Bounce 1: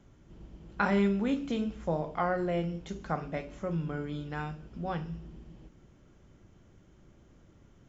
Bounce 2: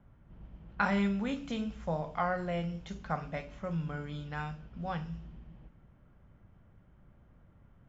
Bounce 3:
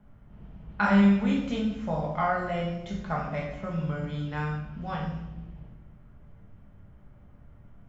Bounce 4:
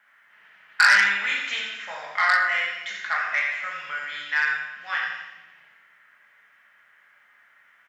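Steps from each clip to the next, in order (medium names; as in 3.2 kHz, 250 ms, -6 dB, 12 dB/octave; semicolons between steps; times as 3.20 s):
level-controlled noise filter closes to 1.5 kHz, open at -30.5 dBFS; peaking EQ 350 Hz -10.5 dB 0.88 oct
simulated room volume 330 m³, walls mixed, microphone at 1.4 m; trim +1 dB
resonant high-pass 1.8 kHz, resonance Q 4.4; feedback delay 86 ms, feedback 46%, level -8 dB; transformer saturation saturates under 3.8 kHz; trim +8.5 dB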